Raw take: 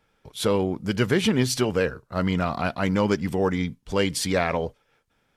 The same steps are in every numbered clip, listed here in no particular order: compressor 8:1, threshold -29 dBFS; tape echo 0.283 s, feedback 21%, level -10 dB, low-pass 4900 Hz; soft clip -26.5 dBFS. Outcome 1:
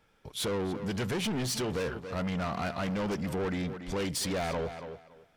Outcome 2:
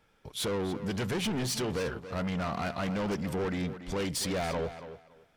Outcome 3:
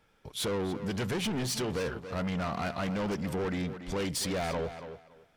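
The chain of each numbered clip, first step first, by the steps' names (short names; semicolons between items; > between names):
tape echo > soft clip > compressor; soft clip > compressor > tape echo; soft clip > tape echo > compressor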